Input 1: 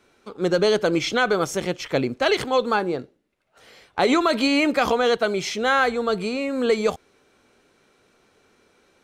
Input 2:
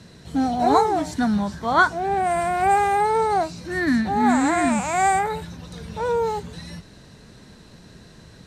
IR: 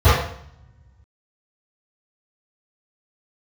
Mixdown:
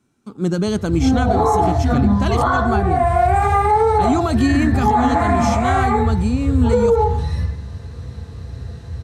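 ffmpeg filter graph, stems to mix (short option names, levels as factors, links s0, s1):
-filter_complex "[0:a]agate=range=0.447:threshold=0.00251:ratio=16:detection=peak,equalizer=f=125:t=o:w=1:g=11,equalizer=f=250:t=o:w=1:g=9,equalizer=f=500:t=o:w=1:g=-11,equalizer=f=2000:t=o:w=1:g=-7,equalizer=f=4000:t=o:w=1:g=-6,equalizer=f=8000:t=o:w=1:g=5,volume=1.06,asplit=2[s0][s1];[1:a]adelay=650,volume=0.891,asplit=2[s2][s3];[s3]volume=0.0944[s4];[s1]apad=whole_len=401786[s5];[s2][s5]sidechaincompress=threshold=0.02:ratio=8:attack=16:release=210[s6];[2:a]atrim=start_sample=2205[s7];[s4][s7]afir=irnorm=-1:irlink=0[s8];[s0][s6][s8]amix=inputs=3:normalize=0,alimiter=limit=0.447:level=0:latency=1:release=58"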